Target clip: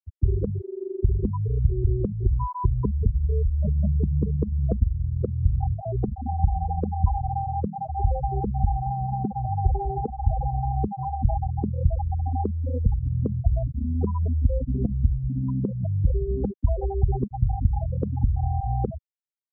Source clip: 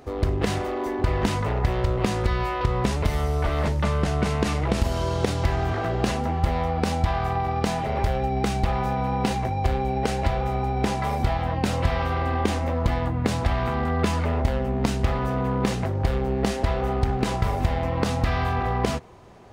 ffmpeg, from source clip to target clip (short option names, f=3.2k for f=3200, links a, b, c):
-filter_complex "[0:a]afftfilt=real='re*gte(hypot(re,im),0.316)':imag='im*gte(hypot(re,im),0.316)':win_size=1024:overlap=0.75,crystalizer=i=4:c=0,acrossover=split=150|3000[a][b][c];[b]acompressor=threshold=-31dB:ratio=3[d];[a][d][c]amix=inputs=3:normalize=0,aresample=16000,aresample=44100,volume=3dB"